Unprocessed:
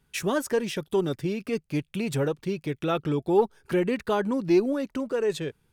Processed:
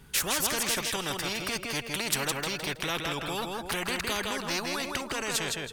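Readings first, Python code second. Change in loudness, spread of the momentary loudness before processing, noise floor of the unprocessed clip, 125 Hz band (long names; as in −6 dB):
−2.5 dB, 7 LU, −71 dBFS, −8.0 dB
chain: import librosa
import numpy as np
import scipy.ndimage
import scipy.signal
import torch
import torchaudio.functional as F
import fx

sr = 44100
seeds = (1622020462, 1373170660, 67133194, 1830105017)

p1 = x + fx.echo_feedback(x, sr, ms=162, feedback_pct=21, wet_db=-7.5, dry=0)
p2 = fx.spectral_comp(p1, sr, ratio=4.0)
y = F.gain(torch.from_numpy(p2), -1.5).numpy()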